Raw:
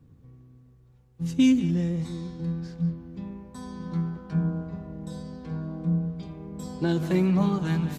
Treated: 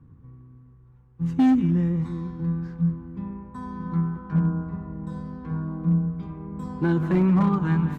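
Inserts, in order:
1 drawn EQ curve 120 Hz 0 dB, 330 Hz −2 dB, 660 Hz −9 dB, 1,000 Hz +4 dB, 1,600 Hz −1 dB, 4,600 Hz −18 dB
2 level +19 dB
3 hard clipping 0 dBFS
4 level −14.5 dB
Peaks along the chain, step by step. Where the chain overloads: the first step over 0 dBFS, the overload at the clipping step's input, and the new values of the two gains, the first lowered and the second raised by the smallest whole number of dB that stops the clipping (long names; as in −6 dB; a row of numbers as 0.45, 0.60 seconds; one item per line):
−14.0, +5.0, 0.0, −14.5 dBFS
step 2, 5.0 dB
step 2 +14 dB, step 4 −9.5 dB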